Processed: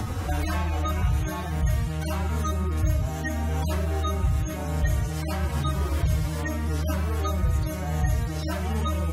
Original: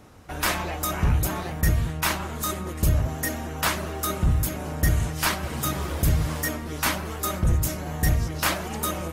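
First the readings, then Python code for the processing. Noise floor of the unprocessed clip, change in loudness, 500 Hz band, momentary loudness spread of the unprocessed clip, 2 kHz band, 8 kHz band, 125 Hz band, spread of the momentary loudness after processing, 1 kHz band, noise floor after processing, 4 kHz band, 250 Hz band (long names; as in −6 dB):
−34 dBFS, −1.5 dB, −1.0 dB, 5 LU, −6.5 dB, −9.5 dB, +1.0 dB, 3 LU, −3.0 dB, −31 dBFS, −7.5 dB, −0.5 dB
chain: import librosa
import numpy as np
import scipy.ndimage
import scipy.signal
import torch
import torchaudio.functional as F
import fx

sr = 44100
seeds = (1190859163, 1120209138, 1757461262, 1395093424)

y = fx.hpss_only(x, sr, part='harmonic')
y = fx.band_squash(y, sr, depth_pct=100)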